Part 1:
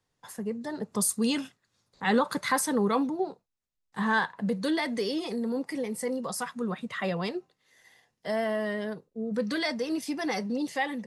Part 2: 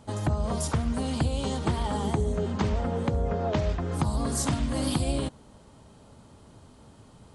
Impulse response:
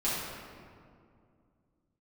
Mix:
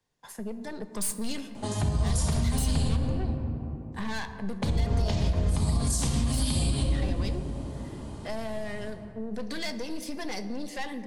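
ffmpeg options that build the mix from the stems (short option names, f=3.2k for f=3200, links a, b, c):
-filter_complex "[0:a]aeval=exprs='(tanh(25.1*val(0)+0.6)-tanh(0.6))/25.1':c=same,volume=1.5dB,asplit=2[a][b];[b]volume=-18.5dB[c];[1:a]adelay=1550,volume=1.5dB,asplit=3[d][e][f];[d]atrim=end=2.88,asetpts=PTS-STARTPTS,afade=t=out:st=2.876:d=0.004:c=hsin[g];[e]atrim=start=2.88:end=4.62,asetpts=PTS-STARTPTS,volume=0[h];[f]atrim=start=4.62,asetpts=PTS-STARTPTS,afade=t=in:d=0.004:c=hsin[i];[g][h][i]concat=n=3:v=0:a=1,asplit=2[j][k];[k]volume=-3.5dB[l];[2:a]atrim=start_sample=2205[m];[c][l]amix=inputs=2:normalize=0[n];[n][m]afir=irnorm=-1:irlink=0[o];[a][j][o]amix=inputs=3:normalize=0,acrossover=split=120|3000[p][q][r];[q]acompressor=threshold=-35dB:ratio=2.5[s];[p][s][r]amix=inputs=3:normalize=0,bandreject=f=1.3k:w=11,alimiter=limit=-17dB:level=0:latency=1:release=106"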